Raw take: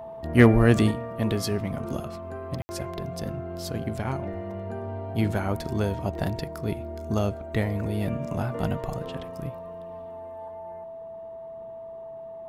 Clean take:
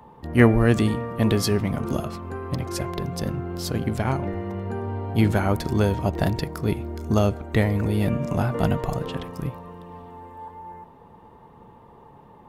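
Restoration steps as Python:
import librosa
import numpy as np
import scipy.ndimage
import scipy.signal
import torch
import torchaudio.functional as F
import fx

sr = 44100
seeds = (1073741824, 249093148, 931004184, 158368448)

y = fx.fix_declip(x, sr, threshold_db=-4.5)
y = fx.notch(y, sr, hz=660.0, q=30.0)
y = fx.fix_ambience(y, sr, seeds[0], print_start_s=11.54, print_end_s=12.04, start_s=2.62, end_s=2.69)
y = fx.fix_level(y, sr, at_s=0.91, step_db=5.5)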